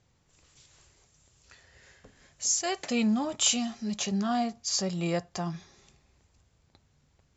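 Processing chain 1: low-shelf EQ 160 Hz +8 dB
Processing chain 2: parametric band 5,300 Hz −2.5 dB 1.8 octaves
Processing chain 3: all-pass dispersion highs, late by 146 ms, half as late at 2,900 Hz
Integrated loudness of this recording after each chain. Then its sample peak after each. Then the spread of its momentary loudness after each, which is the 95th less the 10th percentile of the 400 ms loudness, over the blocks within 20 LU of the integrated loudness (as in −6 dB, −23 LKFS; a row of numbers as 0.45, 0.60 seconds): −27.5, −29.5, −28.5 LKFS; −11.5, −13.5, −11.5 dBFS; 8, 9, 10 LU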